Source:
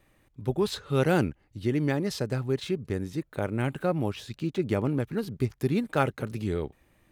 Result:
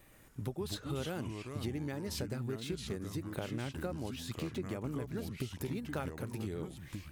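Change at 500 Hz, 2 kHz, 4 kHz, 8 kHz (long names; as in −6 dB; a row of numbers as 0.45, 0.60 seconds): −12.5, −11.0, −5.5, −2.5 decibels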